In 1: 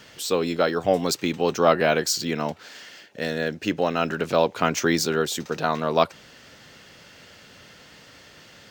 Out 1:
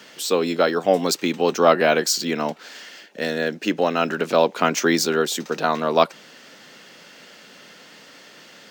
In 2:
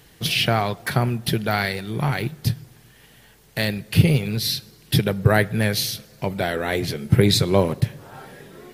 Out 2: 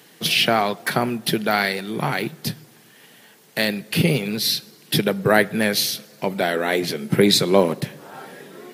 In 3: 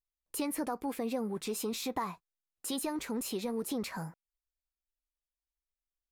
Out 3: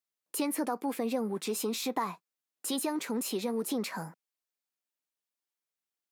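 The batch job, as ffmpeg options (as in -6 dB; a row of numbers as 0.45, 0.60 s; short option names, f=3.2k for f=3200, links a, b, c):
-af "highpass=f=180:w=0.5412,highpass=f=180:w=1.3066,volume=3dB"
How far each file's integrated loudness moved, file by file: +3.0, +1.0, +3.0 LU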